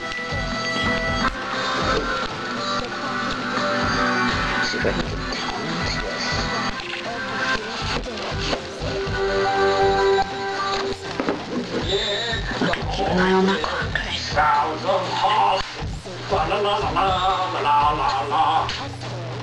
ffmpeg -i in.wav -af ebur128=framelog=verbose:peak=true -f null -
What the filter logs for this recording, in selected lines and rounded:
Integrated loudness:
  I:         -22.0 LUFS
  Threshold: -32.0 LUFS
Loudness range:
  LRA:         3.6 LU
  Threshold: -42.0 LUFS
  LRA low:   -24.3 LUFS
  LRA high:  -20.7 LUFS
True peak:
  Peak:       -8.0 dBFS